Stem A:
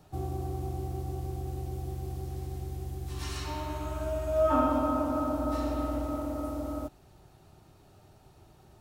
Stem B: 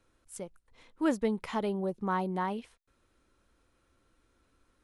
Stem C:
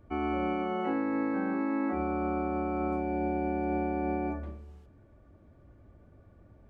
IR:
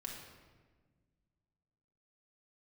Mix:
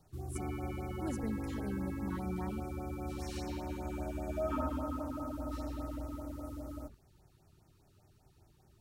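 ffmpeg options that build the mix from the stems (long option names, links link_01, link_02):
-filter_complex "[0:a]volume=-6.5dB[link_01];[1:a]bass=frequency=250:gain=12,treble=frequency=4000:gain=10,volume=-12.5dB[link_02];[2:a]alimiter=level_in=3.5dB:limit=-24dB:level=0:latency=1,volume=-3.5dB,acompressor=threshold=-40dB:ratio=2.5,adelay=250,volume=2dB[link_03];[link_01][link_02][link_03]amix=inputs=3:normalize=0,equalizer=frequency=660:width=0.35:gain=-4,afftfilt=real='re*(1-between(b*sr/1024,580*pow(3800/580,0.5+0.5*sin(2*PI*5*pts/sr))/1.41,580*pow(3800/580,0.5+0.5*sin(2*PI*5*pts/sr))*1.41))':imag='im*(1-between(b*sr/1024,580*pow(3800/580,0.5+0.5*sin(2*PI*5*pts/sr))/1.41,580*pow(3800/580,0.5+0.5*sin(2*PI*5*pts/sr))*1.41))':win_size=1024:overlap=0.75"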